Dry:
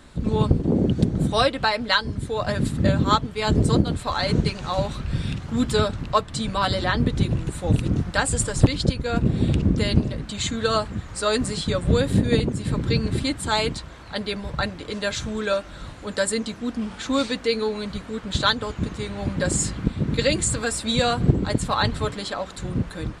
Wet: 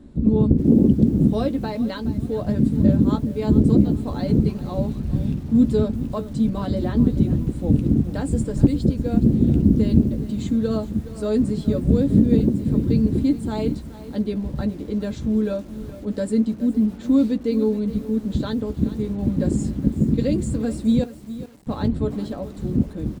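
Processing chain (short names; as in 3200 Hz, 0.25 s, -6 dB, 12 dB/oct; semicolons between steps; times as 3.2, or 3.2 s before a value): 21.03–21.67 flipped gate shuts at -15 dBFS, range -36 dB; doubler 14 ms -11 dB; in parallel at -1 dB: limiter -12.5 dBFS, peak gain reduction 8.5 dB; on the sum: EQ curve 140 Hz 0 dB, 240 Hz +8 dB, 1300 Hz -17 dB; lo-fi delay 0.42 s, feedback 35%, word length 6-bit, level -14.5 dB; gain -4 dB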